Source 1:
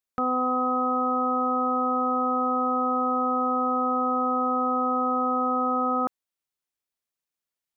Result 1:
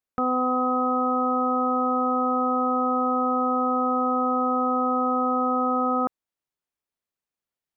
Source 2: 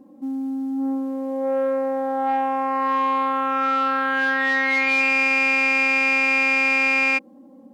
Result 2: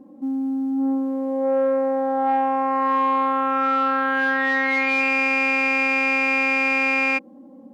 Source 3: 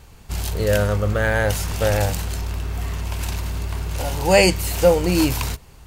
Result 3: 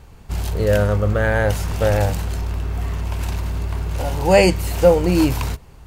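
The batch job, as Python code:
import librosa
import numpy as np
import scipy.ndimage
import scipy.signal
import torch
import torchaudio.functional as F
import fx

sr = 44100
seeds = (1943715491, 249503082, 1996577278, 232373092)

y = fx.high_shelf(x, sr, hz=2200.0, db=-8.0)
y = y * librosa.db_to_amplitude(2.5)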